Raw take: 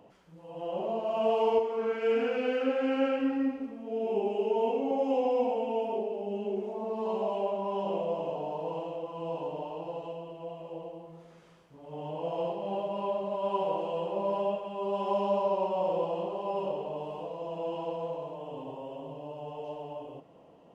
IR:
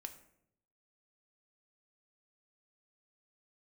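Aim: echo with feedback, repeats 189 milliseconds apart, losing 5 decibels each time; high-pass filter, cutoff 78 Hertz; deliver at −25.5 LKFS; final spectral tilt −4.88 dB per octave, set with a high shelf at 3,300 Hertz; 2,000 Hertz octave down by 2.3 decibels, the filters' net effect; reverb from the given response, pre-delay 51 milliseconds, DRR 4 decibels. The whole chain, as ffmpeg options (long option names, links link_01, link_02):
-filter_complex "[0:a]highpass=78,equalizer=frequency=2000:width_type=o:gain=-5.5,highshelf=frequency=3300:gain=5.5,aecho=1:1:189|378|567|756|945|1134|1323:0.562|0.315|0.176|0.0988|0.0553|0.031|0.0173,asplit=2[link_01][link_02];[1:a]atrim=start_sample=2205,adelay=51[link_03];[link_02][link_03]afir=irnorm=-1:irlink=0,volume=0.5dB[link_04];[link_01][link_04]amix=inputs=2:normalize=0,volume=3dB"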